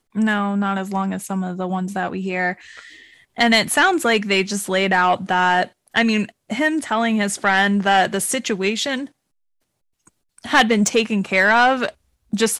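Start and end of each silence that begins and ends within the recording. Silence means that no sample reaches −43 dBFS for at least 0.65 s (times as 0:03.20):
0:09.09–0:10.07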